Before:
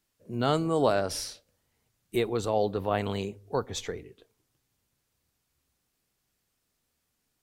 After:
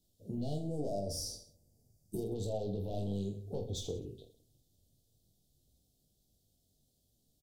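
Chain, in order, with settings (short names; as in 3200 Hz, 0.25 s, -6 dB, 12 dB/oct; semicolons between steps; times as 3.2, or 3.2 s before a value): soft clip -27 dBFS, distortion -7 dB; elliptic band-stop 680–3500 Hz, stop band 50 dB; tone controls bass +7 dB, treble -1 dB; compressor 6:1, threshold -37 dBFS, peak gain reduction 10.5 dB; spectral gain 0.6–2.22, 1000–4500 Hz -14 dB; reverse bouncing-ball echo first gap 20 ms, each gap 1.3×, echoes 5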